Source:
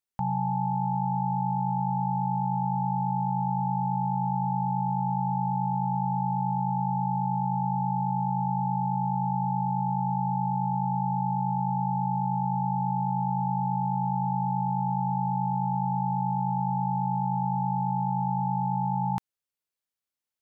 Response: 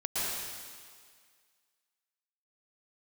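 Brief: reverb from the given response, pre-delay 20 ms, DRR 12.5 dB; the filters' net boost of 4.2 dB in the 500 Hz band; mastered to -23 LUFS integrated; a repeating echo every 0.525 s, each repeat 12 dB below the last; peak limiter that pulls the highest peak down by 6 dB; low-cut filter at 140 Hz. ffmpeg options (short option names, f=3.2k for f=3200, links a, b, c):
-filter_complex "[0:a]highpass=140,equalizer=f=500:t=o:g=8.5,alimiter=limit=-23.5dB:level=0:latency=1,aecho=1:1:525|1050|1575:0.251|0.0628|0.0157,asplit=2[a][b];[1:a]atrim=start_sample=2205,adelay=20[c];[b][c]afir=irnorm=-1:irlink=0,volume=-20.5dB[d];[a][d]amix=inputs=2:normalize=0,volume=6.5dB"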